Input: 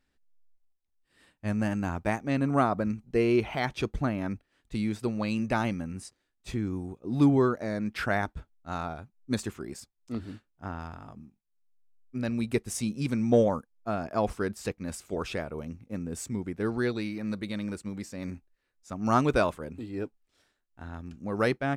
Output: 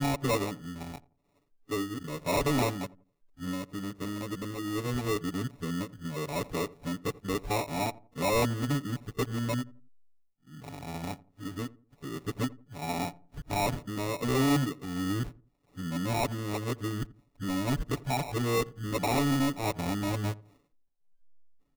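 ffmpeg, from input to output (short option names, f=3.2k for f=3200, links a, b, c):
-filter_complex "[0:a]areverse,lowpass=f=1.5k:w=0.5412,lowpass=f=1.5k:w=1.3066,aecho=1:1:6.9:0.94,aresample=8000,asoftclip=type=tanh:threshold=-22.5dB,aresample=44100,acrusher=samples=28:mix=1:aa=0.000001,asplit=2[a][b];[b]adelay=85,lowpass=f=860:p=1,volume=-19dB,asplit=2[c][d];[d]adelay=85,lowpass=f=860:p=1,volume=0.36,asplit=2[e][f];[f]adelay=85,lowpass=f=860:p=1,volume=0.36[g];[c][e][g]amix=inputs=3:normalize=0[h];[a][h]amix=inputs=2:normalize=0"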